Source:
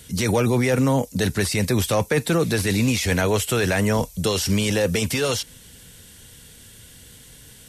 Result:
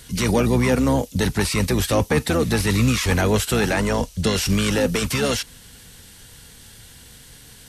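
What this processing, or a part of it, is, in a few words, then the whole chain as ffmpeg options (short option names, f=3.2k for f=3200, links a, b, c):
octave pedal: -filter_complex "[0:a]asplit=2[a][b];[b]asetrate=22050,aresample=44100,atempo=2,volume=-5dB[c];[a][c]amix=inputs=2:normalize=0,asettb=1/sr,asplit=3[d][e][f];[d]atrim=end=3.724[g];[e]atrim=start=3.72:end=4.34,asetpts=PTS-STARTPTS,afade=t=in:d=0.004:c=qsin,afade=t=out:st=0.616:d=0.004:c=qsin,lowpass=10k[h];[f]atrim=start=4.336[i];[g][h]acrossfade=d=0.004:c1=hsin:c2=qsin[j];[j][i]acrossfade=d=0.004:c1=qsin:c2=hsin"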